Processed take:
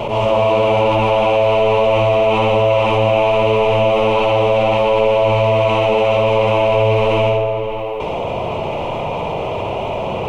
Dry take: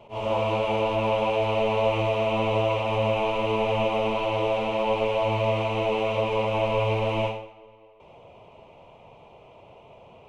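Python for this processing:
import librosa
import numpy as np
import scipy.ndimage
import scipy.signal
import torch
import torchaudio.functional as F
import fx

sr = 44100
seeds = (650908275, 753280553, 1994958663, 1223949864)

y = fx.echo_filtered(x, sr, ms=62, feedback_pct=61, hz=1600.0, wet_db=-3.5)
y = fx.env_flatten(y, sr, amount_pct=70)
y = y * 10.0 ** (6.0 / 20.0)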